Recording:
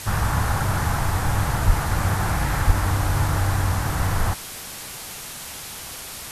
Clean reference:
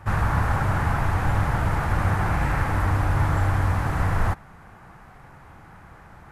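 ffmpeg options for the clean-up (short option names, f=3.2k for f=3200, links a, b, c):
-filter_complex "[0:a]asplit=3[a][b][c];[a]afade=t=out:st=1.66:d=0.02[d];[b]highpass=f=140:w=0.5412,highpass=f=140:w=1.3066,afade=t=in:st=1.66:d=0.02,afade=t=out:st=1.78:d=0.02[e];[c]afade=t=in:st=1.78:d=0.02[f];[d][e][f]amix=inputs=3:normalize=0,asplit=3[g][h][i];[g]afade=t=out:st=2.66:d=0.02[j];[h]highpass=f=140:w=0.5412,highpass=f=140:w=1.3066,afade=t=in:st=2.66:d=0.02,afade=t=out:st=2.78:d=0.02[k];[i]afade=t=in:st=2.78:d=0.02[l];[j][k][l]amix=inputs=3:normalize=0,afwtdn=0.02"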